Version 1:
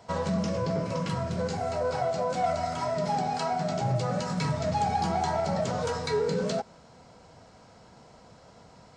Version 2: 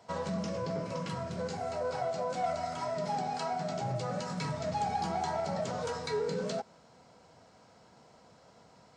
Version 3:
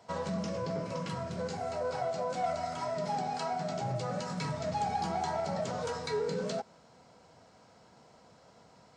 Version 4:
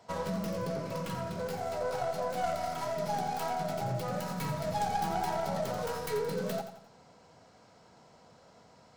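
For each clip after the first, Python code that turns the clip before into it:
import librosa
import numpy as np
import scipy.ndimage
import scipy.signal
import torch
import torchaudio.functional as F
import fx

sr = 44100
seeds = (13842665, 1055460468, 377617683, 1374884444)

y1 = fx.highpass(x, sr, hz=140.0, slope=6)
y1 = y1 * librosa.db_to_amplitude(-5.0)
y2 = y1
y3 = fx.tracing_dist(y2, sr, depth_ms=0.36)
y3 = fx.echo_feedback(y3, sr, ms=87, feedback_pct=41, wet_db=-10.0)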